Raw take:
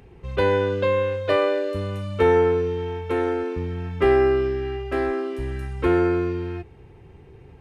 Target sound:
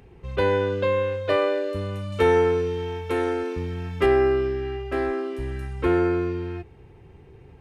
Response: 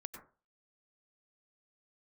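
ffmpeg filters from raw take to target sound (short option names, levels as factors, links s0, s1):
-filter_complex "[0:a]asettb=1/sr,asplit=3[s0][s1][s2];[s0]atrim=end=2.124[s3];[s1]atrim=start=2.12:end=4.06,asetpts=PTS-STARTPTS,afade=t=in:d=0.004:c=qsin,afade=t=out:st=1.936:d=0.004:c=qsin,highshelf=f=3500:g=9.5[s4];[s2]atrim=start=4.056[s5];[s3][s4]acrossfade=d=0.004:c1=hsin:c2=qsin[s6];[s6][s5]acrossfade=d=0.004:c1=qsin:c2=hsin,volume=0.841"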